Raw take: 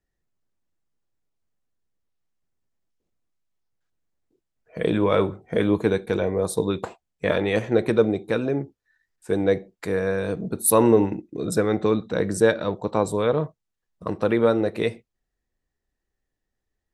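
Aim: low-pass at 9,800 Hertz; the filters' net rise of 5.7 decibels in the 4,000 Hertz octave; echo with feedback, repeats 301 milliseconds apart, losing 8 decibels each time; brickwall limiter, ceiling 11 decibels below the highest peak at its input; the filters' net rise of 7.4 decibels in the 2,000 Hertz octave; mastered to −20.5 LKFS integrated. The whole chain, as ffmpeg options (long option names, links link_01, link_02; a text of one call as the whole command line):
ffmpeg -i in.wav -af "lowpass=9800,equalizer=frequency=2000:width_type=o:gain=8.5,equalizer=frequency=4000:width_type=o:gain=4,alimiter=limit=-13dB:level=0:latency=1,aecho=1:1:301|602|903|1204|1505:0.398|0.159|0.0637|0.0255|0.0102,volume=5dB" out.wav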